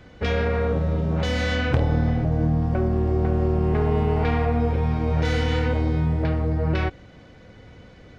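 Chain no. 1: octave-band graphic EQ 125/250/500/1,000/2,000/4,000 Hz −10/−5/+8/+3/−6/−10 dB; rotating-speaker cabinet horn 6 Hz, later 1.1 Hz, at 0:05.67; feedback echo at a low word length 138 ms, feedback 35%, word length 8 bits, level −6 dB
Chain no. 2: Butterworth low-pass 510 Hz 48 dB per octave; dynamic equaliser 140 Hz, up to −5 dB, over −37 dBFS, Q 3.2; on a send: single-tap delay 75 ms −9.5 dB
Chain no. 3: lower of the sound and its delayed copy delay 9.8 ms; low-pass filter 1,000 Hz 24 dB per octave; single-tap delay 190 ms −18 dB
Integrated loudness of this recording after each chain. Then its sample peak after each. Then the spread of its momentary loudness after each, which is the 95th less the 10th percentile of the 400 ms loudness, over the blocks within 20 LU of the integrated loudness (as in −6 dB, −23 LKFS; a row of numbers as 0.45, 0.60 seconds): −25.0, −23.5, −25.5 LKFS; −9.5, −11.0, −11.0 dBFS; 5, 3, 4 LU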